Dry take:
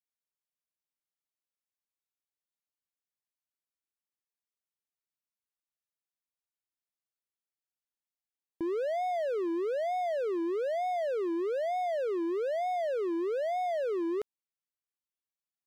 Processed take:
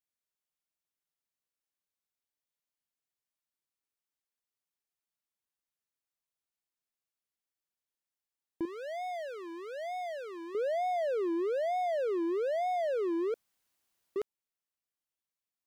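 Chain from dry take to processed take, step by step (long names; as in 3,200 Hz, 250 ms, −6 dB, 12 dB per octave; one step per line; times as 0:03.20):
0:08.65–0:10.55: parametric band 390 Hz −12.5 dB 1.7 octaves
0:13.34–0:14.16: fill with room tone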